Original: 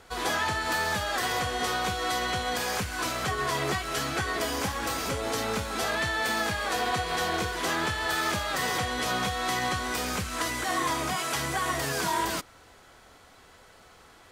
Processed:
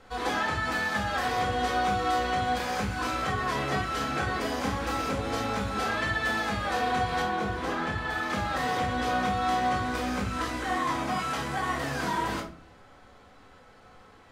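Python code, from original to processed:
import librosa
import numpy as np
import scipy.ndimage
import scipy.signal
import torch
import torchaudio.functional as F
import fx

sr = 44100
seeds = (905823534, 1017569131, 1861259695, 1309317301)

y = fx.lowpass(x, sr, hz=fx.steps((0.0, 3200.0), (7.22, 1400.0), (8.3, 2500.0)), slope=6)
y = fx.room_shoebox(y, sr, seeds[0], volume_m3=360.0, walls='furnished', distance_m=2.1)
y = y * librosa.db_to_amplitude(-3.0)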